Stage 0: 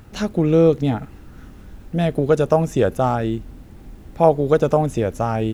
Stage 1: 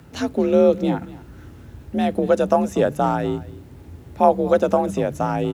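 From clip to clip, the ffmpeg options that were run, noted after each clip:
-af "bandreject=f=50:t=h:w=6,bandreject=f=100:t=h:w=6,bandreject=f=150:t=h:w=6,aecho=1:1:237:0.112,afreqshift=48,volume=-1dB"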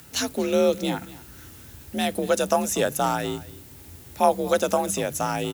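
-af "crystalizer=i=9.5:c=0,volume=-7dB"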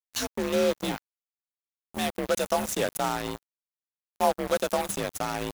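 -af "acrusher=bits=3:mix=0:aa=0.5,volume=-4.5dB"

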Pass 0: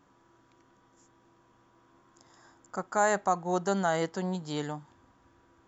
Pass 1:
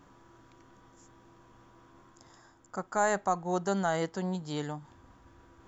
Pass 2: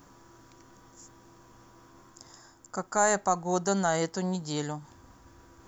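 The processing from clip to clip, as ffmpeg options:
-af "lowshelf=f=70:g=12,areverse,acompressor=mode=upward:threshold=-47dB:ratio=2.5,areverse,volume=-2dB"
-af "aexciter=amount=2.6:drive=5.6:freq=4.6k,volume=2.5dB"

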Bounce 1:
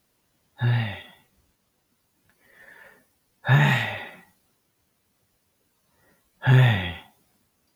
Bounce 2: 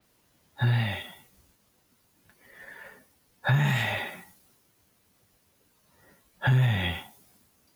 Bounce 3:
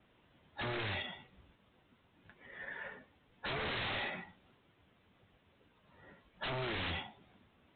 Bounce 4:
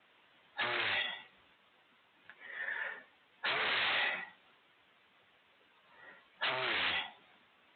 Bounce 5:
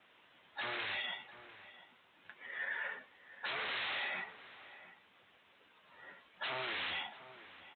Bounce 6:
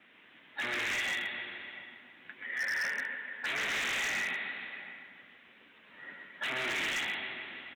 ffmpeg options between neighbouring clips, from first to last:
-filter_complex "[0:a]acrossover=split=180[a][b];[b]alimiter=limit=-18.5dB:level=0:latency=1:release=142[c];[a][c]amix=inputs=2:normalize=0,acompressor=threshold=-26dB:ratio=2.5,adynamicequalizer=threshold=0.00282:dfrequency=4800:dqfactor=0.7:tfrequency=4800:tqfactor=0.7:attack=5:release=100:ratio=0.375:range=3.5:mode=boostabove:tftype=highshelf,volume=3dB"
-af "acompressor=threshold=-35dB:ratio=1.5,aresample=8000,aeval=exprs='0.02*(abs(mod(val(0)/0.02+3,4)-2)-1)':c=same,aresample=44100,volume=1dB"
-af "bandpass=f=2.3k:t=q:w=0.54:csg=0,volume=7dB"
-filter_complex "[0:a]alimiter=level_in=8dB:limit=-24dB:level=0:latency=1:release=29,volume=-8dB,asplit=2[a][b];[b]adelay=699.7,volume=-14dB,highshelf=f=4k:g=-15.7[c];[a][c]amix=inputs=2:normalize=0,volume=1dB"
-af "equalizer=f=250:t=o:w=1:g=11,equalizer=f=1k:t=o:w=1:g=-3,equalizer=f=2k:t=o:w=1:g=9,aecho=1:1:130|273|430.3|603.3|793.7:0.631|0.398|0.251|0.158|0.1,aeval=exprs='0.0422*(abs(mod(val(0)/0.0422+3,4)-2)-1)':c=same"

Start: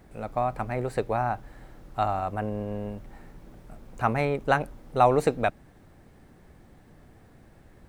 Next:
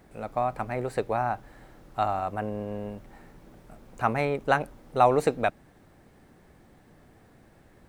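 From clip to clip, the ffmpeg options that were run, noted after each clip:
-af "lowshelf=f=120:g=-7"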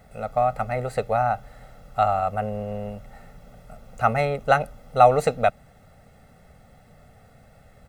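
-af "aecho=1:1:1.5:0.87,volume=1.5dB"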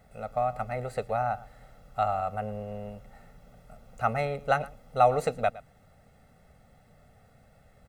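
-af "aecho=1:1:113:0.112,volume=-6.5dB"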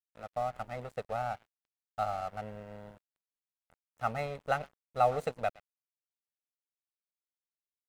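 -af "aeval=exprs='sgn(val(0))*max(abs(val(0))-0.00841,0)':c=same,volume=-5dB"

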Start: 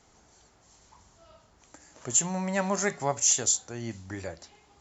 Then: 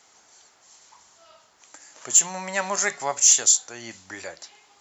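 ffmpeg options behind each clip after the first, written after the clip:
-af "highpass=f=1.3k:p=1,acontrast=82,volume=1dB"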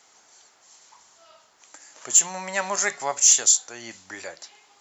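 -af "lowshelf=f=140:g=-7"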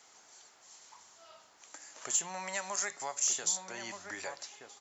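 -filter_complex "[0:a]acrossover=split=640|5000[a][b][c];[a]acompressor=threshold=-45dB:ratio=4[d];[b]acompressor=threshold=-35dB:ratio=4[e];[c]acompressor=threshold=-31dB:ratio=4[f];[d][e][f]amix=inputs=3:normalize=0,asplit=2[g][h];[h]adelay=1224,volume=-6dB,highshelf=f=4k:g=-27.6[i];[g][i]amix=inputs=2:normalize=0,volume=-3dB"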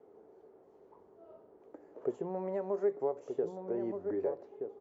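-af "lowpass=f=420:t=q:w=4.9,volume=6.5dB"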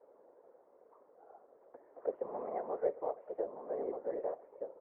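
-af "highpass=f=200:t=q:w=0.5412,highpass=f=200:t=q:w=1.307,lowpass=f=2k:t=q:w=0.5176,lowpass=f=2k:t=q:w=0.7071,lowpass=f=2k:t=q:w=1.932,afreqshift=98,afftfilt=real='hypot(re,im)*cos(2*PI*random(0))':imag='hypot(re,im)*sin(2*PI*random(1))':win_size=512:overlap=0.75,volume=2.5dB"

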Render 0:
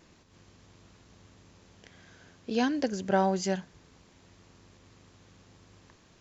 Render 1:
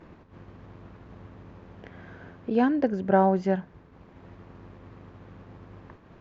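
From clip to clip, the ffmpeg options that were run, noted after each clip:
-filter_complex "[0:a]agate=range=-33dB:threshold=-52dB:ratio=3:detection=peak,lowpass=1.5k,asplit=2[a][b];[b]acompressor=mode=upward:threshold=-32dB:ratio=2.5,volume=-2dB[c];[a][c]amix=inputs=2:normalize=0"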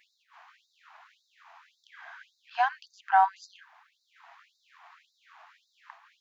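-af "afftfilt=real='re*gte(b*sr/1024,630*pow(3700/630,0.5+0.5*sin(2*PI*1.8*pts/sr)))':imag='im*gte(b*sr/1024,630*pow(3700/630,0.5+0.5*sin(2*PI*1.8*pts/sr)))':win_size=1024:overlap=0.75,volume=4.5dB"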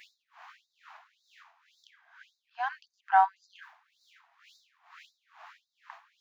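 -af "areverse,acompressor=mode=upward:threshold=-43dB:ratio=2.5,areverse,aeval=exprs='val(0)*pow(10,-19*(0.5-0.5*cos(2*PI*2.2*n/s))/20)':c=same"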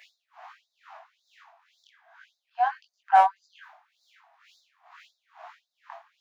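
-af "aeval=exprs='clip(val(0),-1,0.133)':c=same,flanger=delay=19.5:depth=3.3:speed=1.4,highpass=f=650:t=q:w=4.9,volume=2.5dB"

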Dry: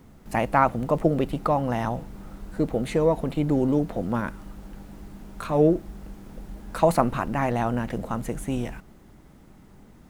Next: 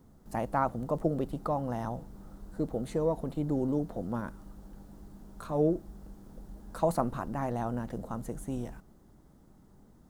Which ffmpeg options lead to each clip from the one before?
-af "equalizer=f=2.4k:w=1.4:g=-11.5,volume=-7.5dB"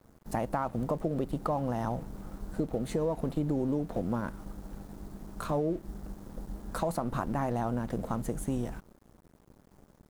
-af "alimiter=limit=-23dB:level=0:latency=1:release=170,aeval=exprs='sgn(val(0))*max(abs(val(0))-0.00141,0)':c=same,acompressor=threshold=-37dB:ratio=2.5,volume=8dB"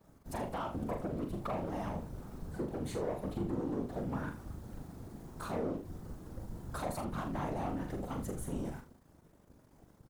-filter_complex "[0:a]asoftclip=type=tanh:threshold=-28dB,afftfilt=real='hypot(re,im)*cos(2*PI*random(0))':imag='hypot(re,im)*sin(2*PI*random(1))':win_size=512:overlap=0.75,asplit=2[a][b];[b]aecho=0:1:41|79:0.501|0.237[c];[a][c]amix=inputs=2:normalize=0,volume=2.5dB"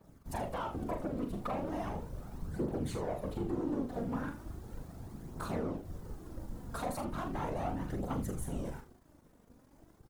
-af "aphaser=in_gain=1:out_gain=1:delay=4.4:decay=0.37:speed=0.37:type=triangular"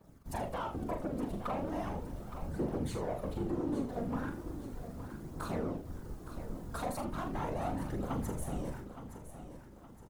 -af "aecho=1:1:867|1734|2601|3468:0.266|0.106|0.0426|0.017"

